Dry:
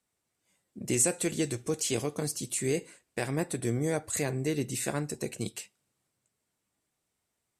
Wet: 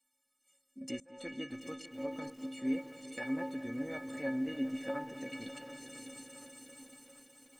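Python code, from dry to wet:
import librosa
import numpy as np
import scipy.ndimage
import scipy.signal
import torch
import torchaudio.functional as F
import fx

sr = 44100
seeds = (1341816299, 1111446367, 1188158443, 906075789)

p1 = fx.tilt_eq(x, sr, slope=1.5)
p2 = fx.stiff_resonator(p1, sr, f0_hz=260.0, decay_s=0.38, stiffness=0.03)
p3 = fx.gate_flip(p2, sr, shuts_db=-30.0, range_db=-25)
p4 = p3 + fx.echo_heads(p3, sr, ms=200, heads='all three', feedback_pct=65, wet_db=-17, dry=0)
p5 = fx.env_lowpass_down(p4, sr, base_hz=1700.0, full_db=-46.5)
p6 = fx.echo_crushed(p5, sr, ms=732, feedback_pct=55, bits=11, wet_db=-13.5)
y = F.gain(torch.from_numpy(p6), 13.0).numpy()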